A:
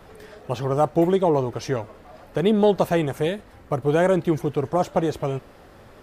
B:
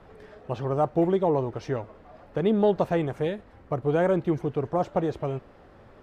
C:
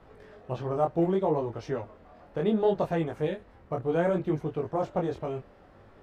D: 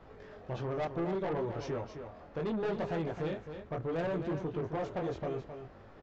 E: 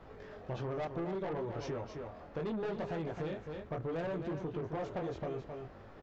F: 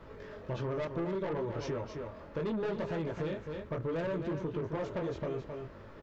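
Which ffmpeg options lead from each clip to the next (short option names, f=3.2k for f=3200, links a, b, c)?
-af "aemphasis=mode=reproduction:type=75fm,volume=-4.5dB"
-af "flanger=delay=18.5:depth=6.5:speed=0.66"
-af "aresample=16000,asoftclip=type=tanh:threshold=-27.5dB,aresample=44100,alimiter=level_in=6.5dB:limit=-24dB:level=0:latency=1,volume=-6.5dB,aecho=1:1:265:0.376"
-af "acompressor=threshold=-37dB:ratio=3,volume=1dB"
-af "asuperstop=centerf=750:order=4:qfactor=5.8,volume=3dB"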